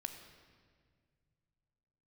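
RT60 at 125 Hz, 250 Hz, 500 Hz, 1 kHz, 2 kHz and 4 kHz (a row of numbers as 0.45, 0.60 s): 3.2, 2.7, 2.2, 1.7, 1.7, 1.4 s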